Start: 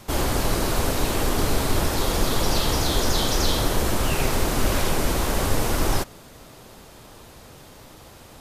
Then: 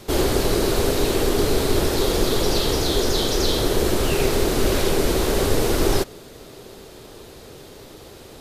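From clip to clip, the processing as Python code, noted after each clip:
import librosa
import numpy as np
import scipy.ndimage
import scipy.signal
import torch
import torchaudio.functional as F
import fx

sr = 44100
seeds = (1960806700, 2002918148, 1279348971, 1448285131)

y = fx.graphic_eq_15(x, sr, hz=(400, 1000, 4000), db=(10, -3, 4))
y = fx.rider(y, sr, range_db=10, speed_s=0.5)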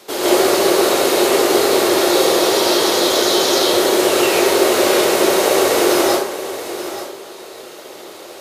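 y = scipy.signal.sosfilt(scipy.signal.butter(2, 420.0, 'highpass', fs=sr, output='sos'), x)
y = y + 10.0 ** (-12.0 / 20.0) * np.pad(y, (int(878 * sr / 1000.0), 0))[:len(y)]
y = fx.rev_plate(y, sr, seeds[0], rt60_s=0.65, hf_ratio=0.6, predelay_ms=115, drr_db=-7.5)
y = y * 10.0 ** (1.5 / 20.0)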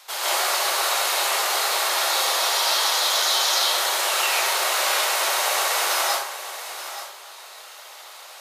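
y = scipy.signal.sosfilt(scipy.signal.butter(4, 800.0, 'highpass', fs=sr, output='sos'), x)
y = y * 10.0 ** (-2.5 / 20.0)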